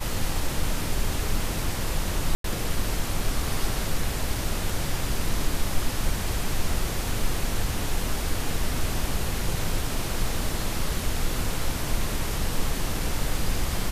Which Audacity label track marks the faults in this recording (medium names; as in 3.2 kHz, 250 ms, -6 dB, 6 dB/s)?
2.350000	2.440000	dropout 93 ms